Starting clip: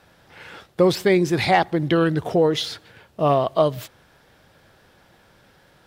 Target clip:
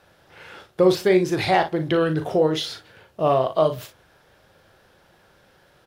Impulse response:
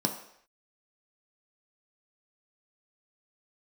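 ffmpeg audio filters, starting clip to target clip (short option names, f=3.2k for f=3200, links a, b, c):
-filter_complex "[0:a]aecho=1:1:38|57:0.398|0.188,asplit=2[a][b];[1:a]atrim=start_sample=2205,asetrate=79380,aresample=44100[c];[b][c]afir=irnorm=-1:irlink=0,volume=-19dB[d];[a][d]amix=inputs=2:normalize=0,volume=-3dB"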